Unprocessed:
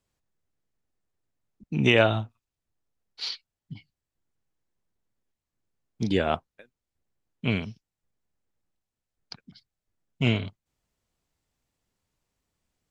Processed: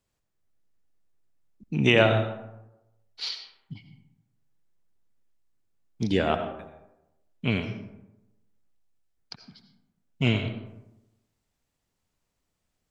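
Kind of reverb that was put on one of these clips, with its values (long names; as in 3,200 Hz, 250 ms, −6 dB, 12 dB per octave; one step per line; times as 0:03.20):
comb and all-pass reverb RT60 0.95 s, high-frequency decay 0.45×, pre-delay 45 ms, DRR 7.5 dB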